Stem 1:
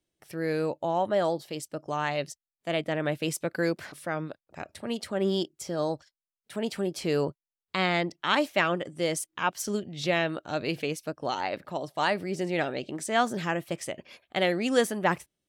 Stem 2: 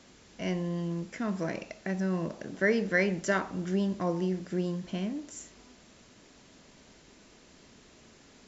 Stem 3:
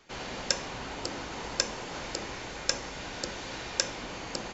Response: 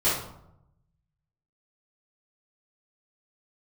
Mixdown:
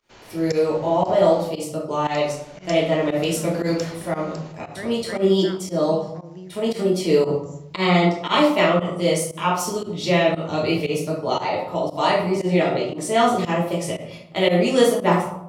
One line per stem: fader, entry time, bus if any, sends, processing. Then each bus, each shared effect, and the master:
-2.5 dB, 0.00 s, send -3.5 dB, peaking EQ 1.6 kHz -11.5 dB 0.29 oct
-9.0 dB, 2.15 s, no send, none
-10.0 dB, 0.00 s, muted 1.48–2.04 s, send -17 dB, none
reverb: on, RT60 0.80 s, pre-delay 3 ms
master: volume shaper 116 bpm, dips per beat 1, -17 dB, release 92 ms

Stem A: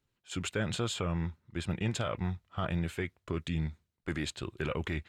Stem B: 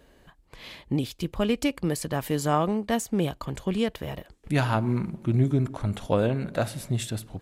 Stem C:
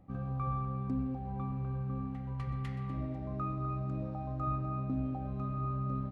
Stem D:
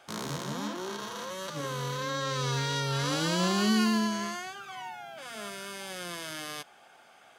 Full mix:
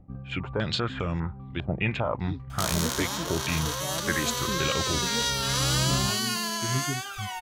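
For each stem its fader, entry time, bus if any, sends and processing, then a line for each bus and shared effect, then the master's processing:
+3.0 dB, 0.00 s, no send, step-sequenced low-pass 5 Hz 670–6300 Hz
-5.5 dB, 1.35 s, no send, expander on every frequency bin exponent 2; Gaussian low-pass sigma 11 samples
+0.5 dB, 0.00 s, no send, tilt EQ -2.5 dB/octave; auto duck -12 dB, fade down 0.25 s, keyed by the first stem
+1.5 dB, 2.50 s, no send, peaking EQ 580 Hz +4.5 dB 1.9 oct; compression 3:1, threshold -28 dBFS, peak gain reduction 6 dB; tilt EQ +4 dB/octave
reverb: none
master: none

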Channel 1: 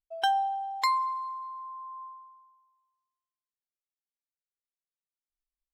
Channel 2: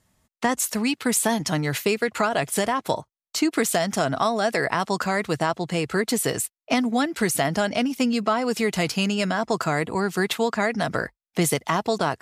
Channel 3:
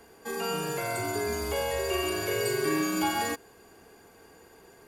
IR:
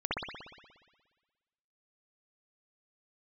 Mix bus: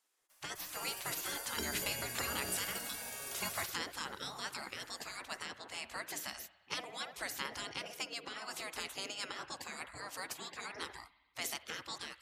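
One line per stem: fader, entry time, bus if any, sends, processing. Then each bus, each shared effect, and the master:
-0.5 dB, 1.35 s, no send, compression, threshold -29 dBFS, peak gain reduction 7 dB
-9.5 dB, 0.00 s, send -23 dB, hum notches 60/120/180/240/300 Hz
-4.5 dB, 0.30 s, send -21 dB, tone controls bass +10 dB, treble +14 dB; auto duck -12 dB, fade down 0.50 s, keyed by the second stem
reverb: on, RT60 1.4 s, pre-delay 59 ms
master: spectral gate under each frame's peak -15 dB weak

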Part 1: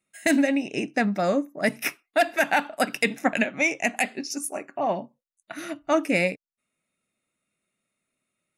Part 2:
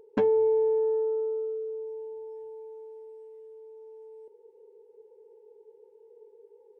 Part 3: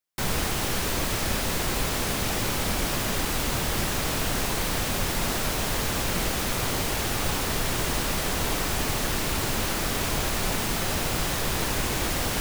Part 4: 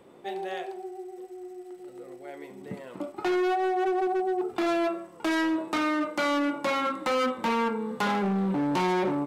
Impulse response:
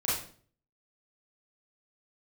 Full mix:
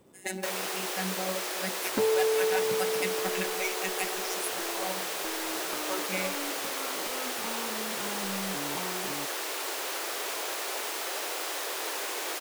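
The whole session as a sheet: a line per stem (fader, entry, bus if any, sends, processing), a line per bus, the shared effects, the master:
-10.5 dB, 0.00 s, no send, treble shelf 4.3 kHz +9 dB; robot voice 188 Hz
-3.0 dB, 1.80 s, no send, none
-5.0 dB, 0.25 s, no send, steep high-pass 360 Hz 36 dB/octave
-8.0 dB, 0.00 s, no send, short-mantissa float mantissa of 2-bit; compression, threshold -34 dBFS, peak gain reduction 8 dB; tone controls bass +8 dB, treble +7 dB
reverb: none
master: none

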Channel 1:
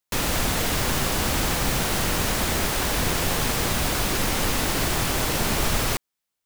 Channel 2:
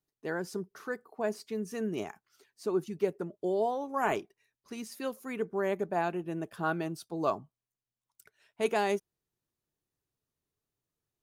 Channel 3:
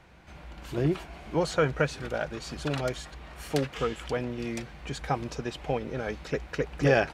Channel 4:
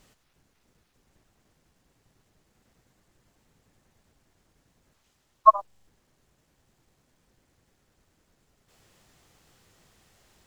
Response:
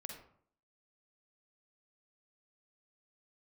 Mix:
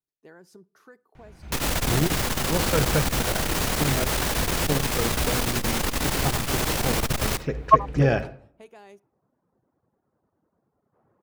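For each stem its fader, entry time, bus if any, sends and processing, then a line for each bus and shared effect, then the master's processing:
-1.0 dB, 1.40 s, send -10 dB, none
-10.5 dB, 0.00 s, send -18.5 dB, compression 6:1, threshold -35 dBFS, peak gain reduction 12 dB
-5.0 dB, 1.15 s, send -3.5 dB, bass shelf 280 Hz +11.5 dB
+1.5 dB, 2.25 s, no send, low-pass 1.2 kHz 24 dB/octave; reverb removal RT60 0.94 s; high-pass 130 Hz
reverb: on, RT60 0.60 s, pre-delay 42 ms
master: transformer saturation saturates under 310 Hz

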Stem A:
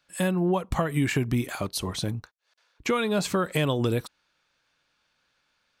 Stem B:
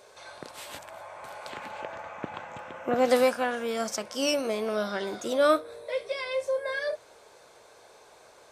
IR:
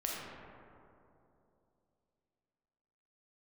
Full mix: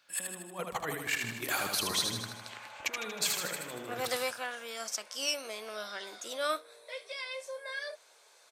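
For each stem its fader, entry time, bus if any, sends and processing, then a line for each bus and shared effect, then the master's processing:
-2.0 dB, 0.00 s, no send, echo send -4.5 dB, peaking EQ 14 kHz +8.5 dB 0.25 oct; compressor with a negative ratio -31 dBFS, ratio -0.5
-6.0 dB, 1.00 s, no send, no echo send, tilt shelf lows -5.5 dB, about 1.4 kHz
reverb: none
echo: feedback delay 78 ms, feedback 59%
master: high-pass 600 Hz 6 dB/octave

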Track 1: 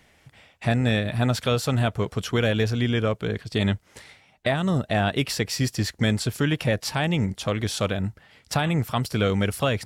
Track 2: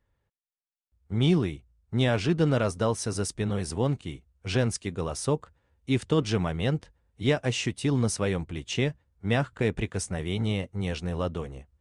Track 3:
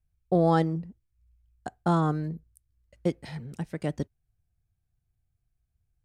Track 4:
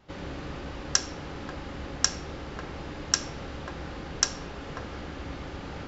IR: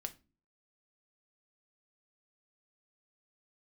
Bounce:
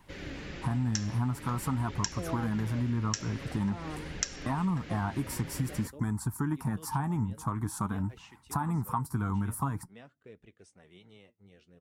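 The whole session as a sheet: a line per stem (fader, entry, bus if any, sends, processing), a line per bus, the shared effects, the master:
+2.0 dB, 0.00 s, send -19.5 dB, FFT filter 300 Hz 0 dB, 550 Hz -24 dB, 950 Hz +10 dB, 3 kHz -29 dB, 9.3 kHz 0 dB
-18.0 dB, 0.65 s, send -15 dB, high-pass 230 Hz 6 dB/octave; treble shelf 9 kHz -9.5 dB; rotary cabinet horn 0.75 Hz
-10.0 dB, 1.85 s, no send, none
+1.0 dB, 0.00 s, no send, graphic EQ 1/2/8 kHz -11/+7/+4 dB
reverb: on, pre-delay 5 ms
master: flange 0.48 Hz, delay 1 ms, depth 8.7 ms, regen +58%; compression 6:1, threshold -27 dBFS, peak gain reduction 11 dB

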